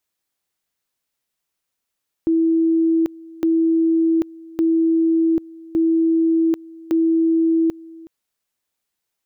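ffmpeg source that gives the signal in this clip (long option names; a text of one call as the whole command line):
ffmpeg -f lavfi -i "aevalsrc='pow(10,(-13.5-22.5*gte(mod(t,1.16),0.79))/20)*sin(2*PI*327*t)':duration=5.8:sample_rate=44100" out.wav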